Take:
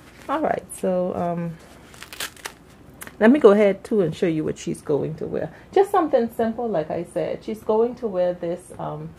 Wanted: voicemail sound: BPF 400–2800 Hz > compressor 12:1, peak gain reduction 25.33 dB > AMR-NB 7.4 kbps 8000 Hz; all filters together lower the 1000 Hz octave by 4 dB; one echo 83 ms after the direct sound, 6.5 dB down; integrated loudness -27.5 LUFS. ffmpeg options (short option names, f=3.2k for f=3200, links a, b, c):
-af "highpass=400,lowpass=2.8k,equalizer=f=1k:t=o:g=-5.5,aecho=1:1:83:0.473,acompressor=threshold=-35dB:ratio=12,volume=13.5dB" -ar 8000 -c:a libopencore_amrnb -b:a 7400